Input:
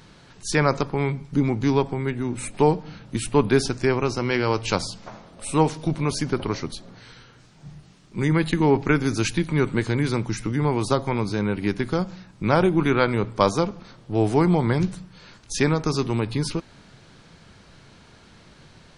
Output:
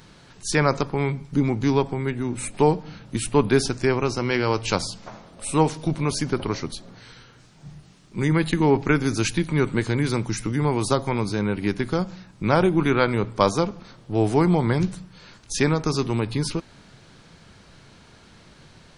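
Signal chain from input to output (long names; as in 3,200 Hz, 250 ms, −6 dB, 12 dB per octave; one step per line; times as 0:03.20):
high-shelf EQ 8,600 Hz +4.5 dB, from 0:10.10 +10.5 dB, from 0:11.31 +3.5 dB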